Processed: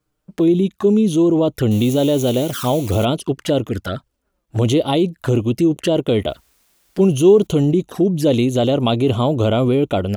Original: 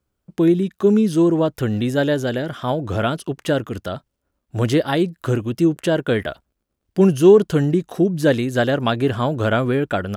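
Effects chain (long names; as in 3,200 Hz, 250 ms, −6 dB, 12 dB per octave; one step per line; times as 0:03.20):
0:01.71–0:03.05: spike at every zero crossing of −22 dBFS
parametric band 160 Hz −3.5 dB 0.58 octaves
in parallel at −2 dB: compressor whose output falls as the input rises −21 dBFS, ratio −1
on the sum: flanger swept by the level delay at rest 6.6 ms, full sweep at −14.5 dBFS
0:06.29–0:07.47: bit-depth reduction 10 bits, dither triangular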